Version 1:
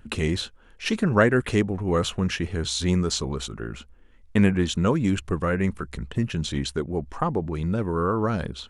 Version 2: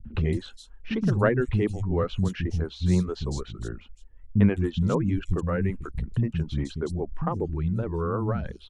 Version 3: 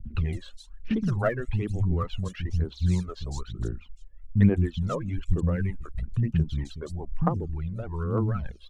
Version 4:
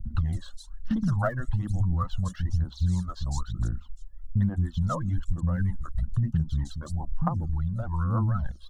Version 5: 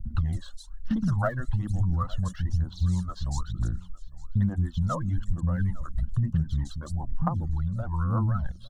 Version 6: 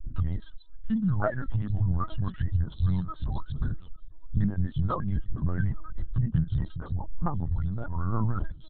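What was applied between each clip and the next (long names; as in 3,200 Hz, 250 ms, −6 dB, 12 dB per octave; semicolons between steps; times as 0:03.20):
spectral tilt −2.5 dB per octave; reverb reduction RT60 0.78 s; three-band delay without the direct sound lows, mids, highs 50/210 ms, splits 230/4,500 Hz; level −4.5 dB
phase shifter 1.1 Hz, delay 1.9 ms, feedback 71%; level −6 dB
phaser with its sweep stopped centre 1,000 Hz, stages 4; downward compressor 6 to 1, threshold −26 dBFS, peak gain reduction 10.5 dB; level +5 dB
single-tap delay 856 ms −21.5 dB
linear-prediction vocoder at 8 kHz pitch kept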